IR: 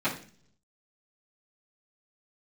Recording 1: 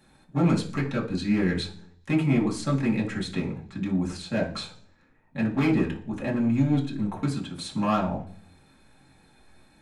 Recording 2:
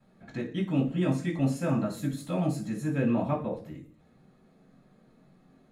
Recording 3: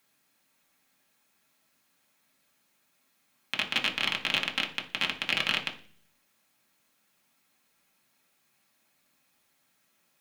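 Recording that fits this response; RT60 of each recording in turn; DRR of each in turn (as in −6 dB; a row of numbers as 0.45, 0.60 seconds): 2; 0.45, 0.45, 0.45 seconds; −4.0, −13.5, 0.5 decibels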